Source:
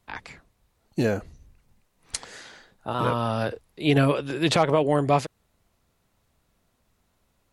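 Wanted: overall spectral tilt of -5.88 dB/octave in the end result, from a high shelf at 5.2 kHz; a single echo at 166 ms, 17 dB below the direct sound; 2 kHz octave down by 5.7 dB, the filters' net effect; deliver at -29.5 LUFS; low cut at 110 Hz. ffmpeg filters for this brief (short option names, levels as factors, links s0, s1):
-af "highpass=110,equalizer=f=2000:t=o:g=-7,highshelf=f=5200:g=-5.5,aecho=1:1:166:0.141,volume=0.596"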